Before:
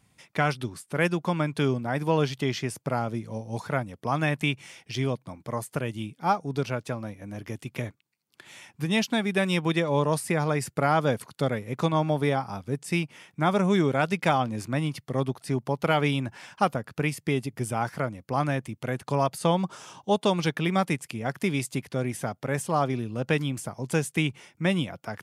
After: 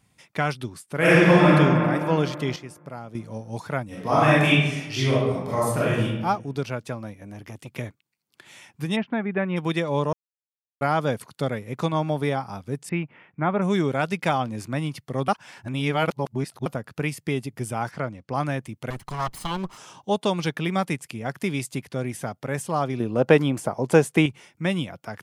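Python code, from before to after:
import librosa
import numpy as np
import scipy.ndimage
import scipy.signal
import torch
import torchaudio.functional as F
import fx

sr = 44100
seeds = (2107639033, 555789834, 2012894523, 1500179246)

y = fx.reverb_throw(x, sr, start_s=0.96, length_s=0.53, rt60_s=2.7, drr_db=-11.5)
y = fx.reverb_throw(y, sr, start_s=3.86, length_s=2.18, rt60_s=1.0, drr_db=-8.5)
y = fx.transformer_sat(y, sr, knee_hz=420.0, at=(7.23, 7.69))
y = fx.lowpass(y, sr, hz=2100.0, slope=24, at=(8.95, 9.56), fade=0.02)
y = fx.lowpass(y, sr, hz=2400.0, slope=24, at=(12.89, 13.62))
y = fx.lowpass(y, sr, hz=6300.0, slope=12, at=(17.91, 18.35))
y = fx.lower_of_two(y, sr, delay_ms=0.98, at=(18.9, 19.78))
y = fx.peak_eq(y, sr, hz=590.0, db=12.0, octaves=3.0, at=(23.0, 24.26))
y = fx.edit(y, sr, fx.clip_gain(start_s=2.56, length_s=0.59, db=-9.5),
    fx.silence(start_s=10.13, length_s=0.68),
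    fx.reverse_span(start_s=15.28, length_s=1.38), tone=tone)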